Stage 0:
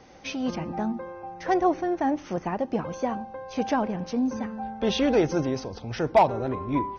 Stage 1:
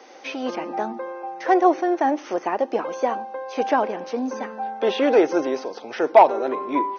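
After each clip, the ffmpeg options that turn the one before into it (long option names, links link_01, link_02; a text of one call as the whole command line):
ffmpeg -i in.wav -filter_complex "[0:a]acrossover=split=2800[link_01][link_02];[link_02]acompressor=threshold=-49dB:ratio=4:attack=1:release=60[link_03];[link_01][link_03]amix=inputs=2:normalize=0,highpass=frequency=320:width=0.5412,highpass=frequency=320:width=1.3066,volume=6.5dB" out.wav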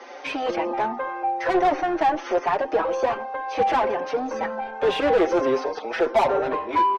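ffmpeg -i in.wav -filter_complex "[0:a]asplit=2[link_01][link_02];[link_02]highpass=frequency=720:poles=1,volume=27dB,asoftclip=type=tanh:threshold=-1dB[link_03];[link_01][link_03]amix=inputs=2:normalize=0,lowpass=frequency=1600:poles=1,volume=-6dB,asplit=2[link_04][link_05];[link_05]adelay=5.4,afreqshift=1.3[link_06];[link_04][link_06]amix=inputs=2:normalize=1,volume=-7.5dB" out.wav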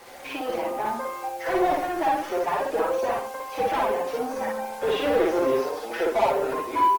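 ffmpeg -i in.wav -af "acrusher=bits=6:mix=0:aa=0.000001,aecho=1:1:55.39|131.2:1|0.282,volume=-5.5dB" -ar 48000 -c:a libopus -b:a 20k out.opus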